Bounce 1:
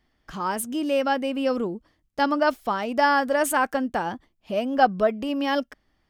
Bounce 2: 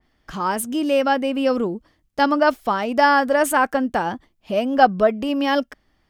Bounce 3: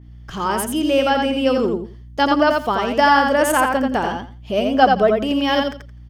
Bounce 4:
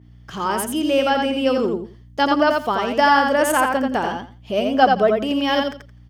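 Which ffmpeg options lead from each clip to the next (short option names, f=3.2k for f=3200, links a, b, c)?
-af "adynamicequalizer=threshold=0.02:dfrequency=2600:dqfactor=0.7:tfrequency=2600:tqfactor=0.7:attack=5:release=100:ratio=0.375:range=2:mode=cutabove:tftype=highshelf,volume=4.5dB"
-af "aeval=exprs='val(0)+0.00794*(sin(2*PI*60*n/s)+sin(2*PI*2*60*n/s)/2+sin(2*PI*3*60*n/s)/3+sin(2*PI*4*60*n/s)/4+sin(2*PI*5*60*n/s)/5)':c=same,equalizer=f=100:t=o:w=0.33:g=10,equalizer=f=400:t=o:w=0.33:g=5,equalizer=f=3.15k:t=o:w=0.33:g=6,equalizer=f=6.3k:t=o:w=0.33:g=4,aecho=1:1:85|170|255:0.631|0.12|0.0228"
-af "highpass=f=110:p=1,volume=-1dB"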